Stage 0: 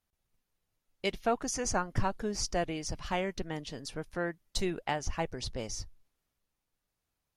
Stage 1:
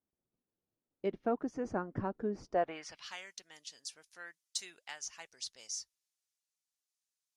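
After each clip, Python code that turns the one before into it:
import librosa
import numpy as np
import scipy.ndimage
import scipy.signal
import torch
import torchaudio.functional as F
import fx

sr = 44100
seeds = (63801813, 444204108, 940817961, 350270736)

y = fx.filter_sweep_bandpass(x, sr, from_hz=310.0, to_hz=6900.0, start_s=2.44, end_s=3.16, q=1.3)
y = fx.dynamic_eq(y, sr, hz=1500.0, q=1.4, threshold_db=-59.0, ratio=4.0, max_db=6)
y = F.gain(torch.from_numpy(y), 1.5).numpy()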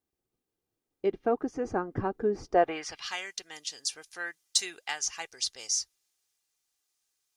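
y = x + 0.39 * np.pad(x, (int(2.5 * sr / 1000.0), 0))[:len(x)]
y = fx.rider(y, sr, range_db=4, speed_s=2.0)
y = F.gain(torch.from_numpy(y), 8.0).numpy()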